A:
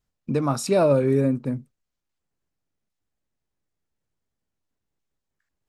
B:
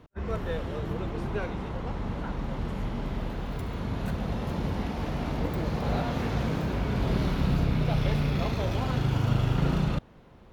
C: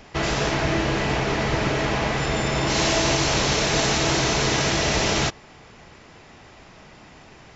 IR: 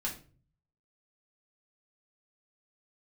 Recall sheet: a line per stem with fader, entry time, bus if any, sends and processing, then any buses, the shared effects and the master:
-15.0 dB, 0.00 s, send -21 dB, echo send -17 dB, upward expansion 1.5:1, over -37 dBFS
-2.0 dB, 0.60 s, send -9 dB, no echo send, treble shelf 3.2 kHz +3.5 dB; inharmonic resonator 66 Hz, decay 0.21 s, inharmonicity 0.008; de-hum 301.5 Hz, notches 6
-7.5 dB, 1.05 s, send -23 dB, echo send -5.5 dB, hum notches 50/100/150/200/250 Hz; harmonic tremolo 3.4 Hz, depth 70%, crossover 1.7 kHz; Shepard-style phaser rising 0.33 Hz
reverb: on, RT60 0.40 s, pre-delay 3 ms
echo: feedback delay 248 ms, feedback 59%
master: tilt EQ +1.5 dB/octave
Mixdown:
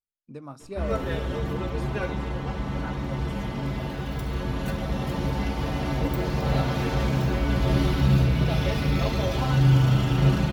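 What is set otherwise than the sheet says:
stem B -2.0 dB -> +7.5 dB; stem C: muted; master: missing tilt EQ +1.5 dB/octave

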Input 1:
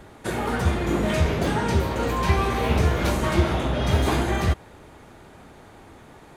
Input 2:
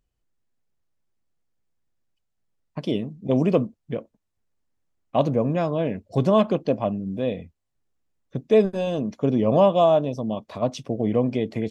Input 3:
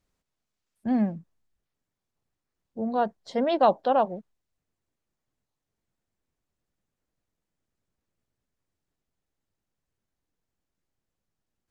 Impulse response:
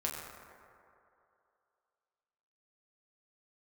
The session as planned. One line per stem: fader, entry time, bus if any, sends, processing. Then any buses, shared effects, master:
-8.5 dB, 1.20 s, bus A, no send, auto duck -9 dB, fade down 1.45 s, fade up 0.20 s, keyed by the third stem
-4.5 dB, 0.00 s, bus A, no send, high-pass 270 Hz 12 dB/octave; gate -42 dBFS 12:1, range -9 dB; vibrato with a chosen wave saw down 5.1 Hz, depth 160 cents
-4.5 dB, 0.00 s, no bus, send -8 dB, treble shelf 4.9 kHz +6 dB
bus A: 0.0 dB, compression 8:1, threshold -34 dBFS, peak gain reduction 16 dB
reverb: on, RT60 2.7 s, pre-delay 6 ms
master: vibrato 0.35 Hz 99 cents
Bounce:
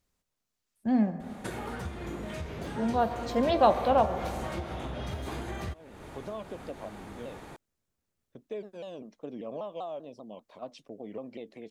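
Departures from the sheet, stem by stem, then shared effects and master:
stem 1 -8.5 dB -> +1.5 dB; stem 2 -4.5 dB -> -15.0 dB; master: missing vibrato 0.35 Hz 99 cents

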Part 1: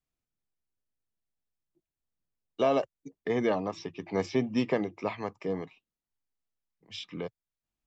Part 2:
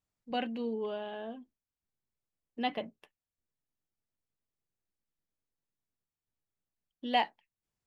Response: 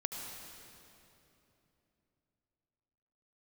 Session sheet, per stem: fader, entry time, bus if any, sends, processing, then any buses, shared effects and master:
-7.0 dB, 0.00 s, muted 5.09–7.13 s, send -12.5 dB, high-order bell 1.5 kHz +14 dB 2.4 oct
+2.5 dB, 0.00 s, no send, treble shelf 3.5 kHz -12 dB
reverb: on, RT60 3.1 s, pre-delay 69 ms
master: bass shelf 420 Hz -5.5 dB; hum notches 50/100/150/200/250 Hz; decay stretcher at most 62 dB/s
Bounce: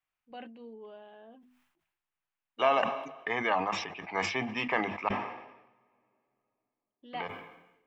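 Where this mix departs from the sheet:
stem 1: send -12.5 dB -> -21.5 dB; stem 2 +2.5 dB -> -9.0 dB

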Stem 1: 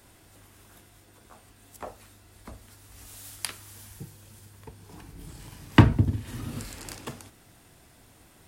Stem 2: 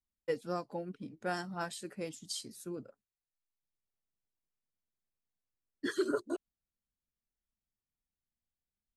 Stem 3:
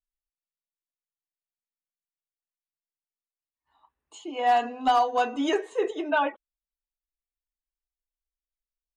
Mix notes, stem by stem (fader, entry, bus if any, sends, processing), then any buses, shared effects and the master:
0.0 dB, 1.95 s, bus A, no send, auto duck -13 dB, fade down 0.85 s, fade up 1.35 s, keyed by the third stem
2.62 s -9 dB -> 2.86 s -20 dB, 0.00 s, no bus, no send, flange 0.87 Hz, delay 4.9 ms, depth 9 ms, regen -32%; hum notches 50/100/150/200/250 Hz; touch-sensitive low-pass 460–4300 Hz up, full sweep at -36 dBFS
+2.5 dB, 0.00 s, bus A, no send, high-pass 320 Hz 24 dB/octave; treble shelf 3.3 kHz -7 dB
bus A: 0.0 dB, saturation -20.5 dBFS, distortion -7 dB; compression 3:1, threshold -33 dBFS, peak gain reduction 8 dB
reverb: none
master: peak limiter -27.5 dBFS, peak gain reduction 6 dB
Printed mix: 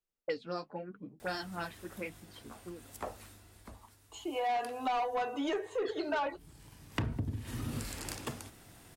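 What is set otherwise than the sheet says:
stem 1: entry 1.95 s -> 1.20 s; stem 2 -9.0 dB -> +1.5 dB; master: missing peak limiter -27.5 dBFS, peak gain reduction 6 dB

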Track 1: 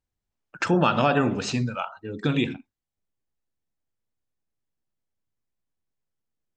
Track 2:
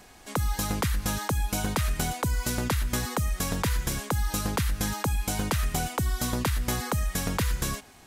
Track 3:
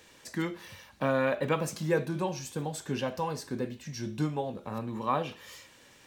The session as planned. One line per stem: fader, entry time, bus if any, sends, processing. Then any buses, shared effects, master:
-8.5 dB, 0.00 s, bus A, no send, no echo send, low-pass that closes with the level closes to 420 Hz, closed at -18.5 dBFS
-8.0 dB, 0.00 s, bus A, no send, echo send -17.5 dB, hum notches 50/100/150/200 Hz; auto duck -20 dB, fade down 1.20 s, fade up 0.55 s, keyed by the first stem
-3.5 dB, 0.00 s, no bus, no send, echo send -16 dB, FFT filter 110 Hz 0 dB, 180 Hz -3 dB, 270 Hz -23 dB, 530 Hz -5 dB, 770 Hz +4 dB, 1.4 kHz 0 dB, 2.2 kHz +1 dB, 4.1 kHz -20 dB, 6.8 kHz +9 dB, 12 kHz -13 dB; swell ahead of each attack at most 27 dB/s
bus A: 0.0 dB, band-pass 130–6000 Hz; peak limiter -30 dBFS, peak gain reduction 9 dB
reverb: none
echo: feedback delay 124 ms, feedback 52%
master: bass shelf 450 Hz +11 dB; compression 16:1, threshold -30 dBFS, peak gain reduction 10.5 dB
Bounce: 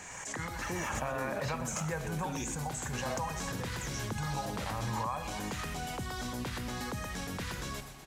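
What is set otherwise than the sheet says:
stem 1: missing low-pass that closes with the level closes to 420 Hz, closed at -18.5 dBFS; stem 2 -8.0 dB -> 0.0 dB; master: missing bass shelf 450 Hz +11 dB

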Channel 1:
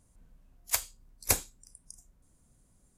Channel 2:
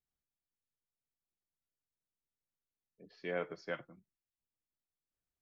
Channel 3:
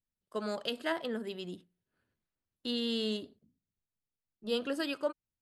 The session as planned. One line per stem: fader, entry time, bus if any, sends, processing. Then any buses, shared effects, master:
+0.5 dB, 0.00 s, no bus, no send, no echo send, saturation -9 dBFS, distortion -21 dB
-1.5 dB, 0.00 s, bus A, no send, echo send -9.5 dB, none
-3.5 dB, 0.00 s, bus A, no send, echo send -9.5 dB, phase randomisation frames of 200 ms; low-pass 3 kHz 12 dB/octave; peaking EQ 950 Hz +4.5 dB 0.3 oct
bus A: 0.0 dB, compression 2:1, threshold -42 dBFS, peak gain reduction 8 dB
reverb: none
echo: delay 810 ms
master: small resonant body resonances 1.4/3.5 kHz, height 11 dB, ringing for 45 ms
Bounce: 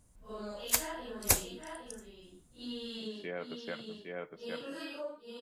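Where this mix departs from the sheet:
stem 2 -1.5 dB -> +5.0 dB; stem 3: missing low-pass 3 kHz 12 dB/octave; master: missing small resonant body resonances 1.4/3.5 kHz, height 11 dB, ringing for 45 ms

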